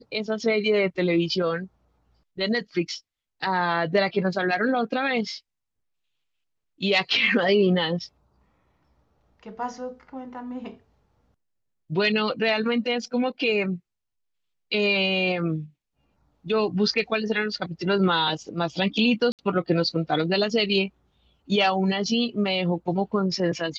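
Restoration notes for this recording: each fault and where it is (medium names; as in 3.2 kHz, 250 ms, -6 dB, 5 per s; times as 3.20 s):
19.32–19.39 s: dropout 68 ms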